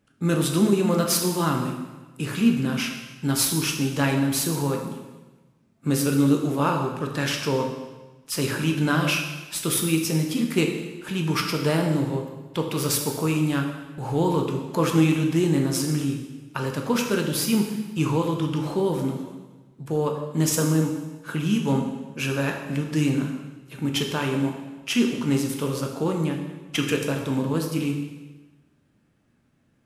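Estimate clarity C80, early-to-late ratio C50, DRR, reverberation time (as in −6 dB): 7.0 dB, 5.5 dB, 2.0 dB, 1.2 s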